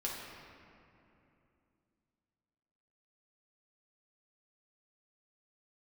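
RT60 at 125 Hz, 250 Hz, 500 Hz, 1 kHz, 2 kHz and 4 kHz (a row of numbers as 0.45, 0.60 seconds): 3.4, 3.6, 3.0, 2.7, 2.4, 1.5 seconds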